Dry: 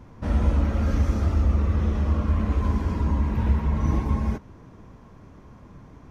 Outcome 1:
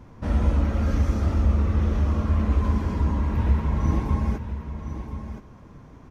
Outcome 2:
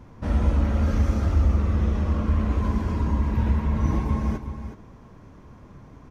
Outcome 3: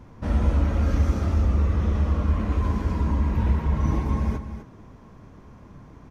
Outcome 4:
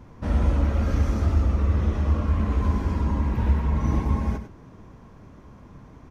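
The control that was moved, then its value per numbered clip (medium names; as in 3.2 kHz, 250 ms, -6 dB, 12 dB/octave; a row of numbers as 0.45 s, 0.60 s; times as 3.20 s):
delay, time: 1023 ms, 368 ms, 251 ms, 99 ms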